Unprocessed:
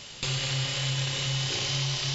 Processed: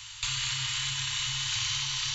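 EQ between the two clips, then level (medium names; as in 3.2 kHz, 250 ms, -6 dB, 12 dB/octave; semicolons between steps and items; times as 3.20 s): Chebyshev band-stop 120–910 Hz, order 5; treble shelf 5.5 kHz +4.5 dB; band-stop 5.1 kHz, Q 8; 0.0 dB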